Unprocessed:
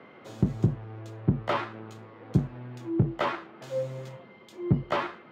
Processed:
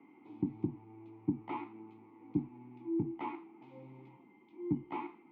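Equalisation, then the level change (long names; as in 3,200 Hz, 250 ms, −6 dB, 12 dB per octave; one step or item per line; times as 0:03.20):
formant filter u
low-pass filter 3,300 Hz 12 dB per octave
low-shelf EQ 200 Hz +5.5 dB
+1.0 dB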